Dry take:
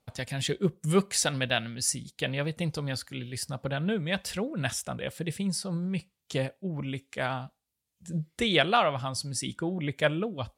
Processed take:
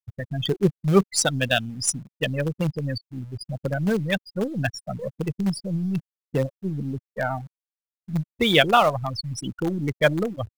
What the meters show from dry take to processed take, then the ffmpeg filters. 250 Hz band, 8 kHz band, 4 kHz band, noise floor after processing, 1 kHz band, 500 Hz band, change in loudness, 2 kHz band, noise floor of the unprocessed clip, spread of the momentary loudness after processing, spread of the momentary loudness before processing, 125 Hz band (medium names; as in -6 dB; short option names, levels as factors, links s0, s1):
+6.0 dB, +2.5 dB, +4.0 dB, under -85 dBFS, +6.0 dB, +6.0 dB, +5.5 dB, +5.0 dB, -82 dBFS, 13 LU, 10 LU, +5.5 dB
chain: -filter_complex "[0:a]afftfilt=real='re*gte(hypot(re,im),0.0708)':imag='im*gte(hypot(re,im),0.0708)':win_size=1024:overlap=0.75,asplit=2[s0][s1];[s1]acrusher=bits=5:dc=4:mix=0:aa=0.000001,volume=0.282[s2];[s0][s2]amix=inputs=2:normalize=0,volume=1.68"